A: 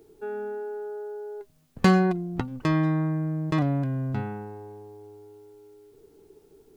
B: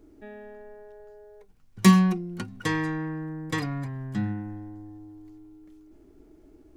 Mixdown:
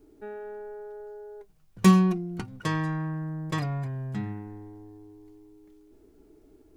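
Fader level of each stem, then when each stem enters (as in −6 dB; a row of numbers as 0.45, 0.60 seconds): −8.0, −4.0 decibels; 0.00, 0.00 seconds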